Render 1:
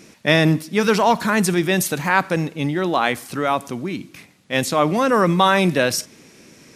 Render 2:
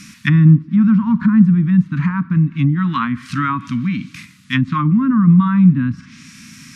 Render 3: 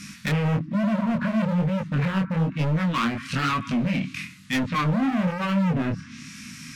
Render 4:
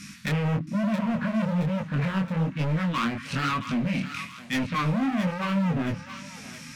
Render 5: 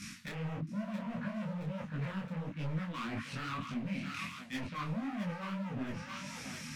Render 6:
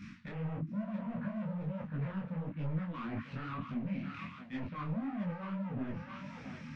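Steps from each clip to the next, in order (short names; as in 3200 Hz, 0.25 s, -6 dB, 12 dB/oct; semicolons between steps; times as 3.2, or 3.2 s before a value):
inverse Chebyshev band-stop 370–790 Hz, stop band 40 dB; harmonic-percussive split harmonic +6 dB; treble ducked by the level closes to 540 Hz, closed at -15 dBFS; gain +5 dB
overloaded stage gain 21 dB; dynamic EQ 2600 Hz, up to +5 dB, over -45 dBFS, Q 2.1; chorus 1.1 Hz, delay 19 ms, depth 7.9 ms; gain +2 dB
thinning echo 0.671 s, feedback 59%, high-pass 1200 Hz, level -9 dB; gain -2.5 dB
reverse; compressor 10:1, threshold -33 dBFS, peak gain reduction 10.5 dB; reverse; detuned doubles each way 54 cents; gain +1 dB
tape spacing loss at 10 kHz 36 dB; gain +1.5 dB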